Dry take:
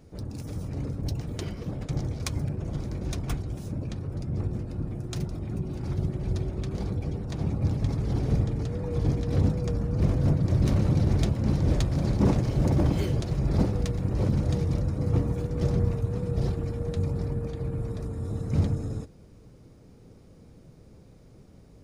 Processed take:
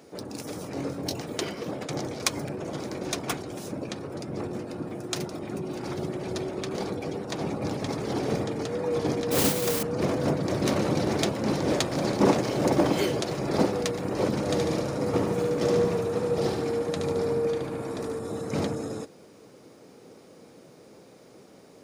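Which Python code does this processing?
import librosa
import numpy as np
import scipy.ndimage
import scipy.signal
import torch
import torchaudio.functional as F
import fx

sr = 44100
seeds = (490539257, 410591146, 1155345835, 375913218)

y = fx.doubler(x, sr, ms=22.0, db=-6, at=(0.73, 1.21))
y = fx.mod_noise(y, sr, seeds[0], snr_db=14, at=(9.31, 9.83))
y = fx.echo_feedback(y, sr, ms=73, feedback_pct=58, wet_db=-5, at=(14.39, 18.19))
y = scipy.signal.sosfilt(scipy.signal.butter(2, 350.0, 'highpass', fs=sr, output='sos'), y)
y = y * librosa.db_to_amplitude(9.0)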